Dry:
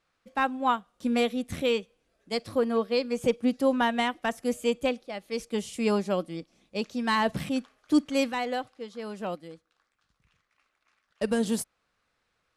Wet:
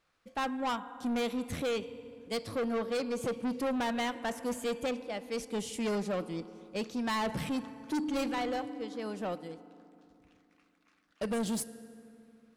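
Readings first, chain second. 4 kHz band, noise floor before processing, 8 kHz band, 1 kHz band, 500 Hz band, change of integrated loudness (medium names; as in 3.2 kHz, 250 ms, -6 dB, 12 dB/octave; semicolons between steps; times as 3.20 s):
-5.5 dB, -77 dBFS, -1.5 dB, -6.0 dB, -6.0 dB, -6.0 dB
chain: FDN reverb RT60 2.7 s, low-frequency decay 1.35×, high-frequency decay 0.55×, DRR 17.5 dB; saturation -28.5 dBFS, distortion -7 dB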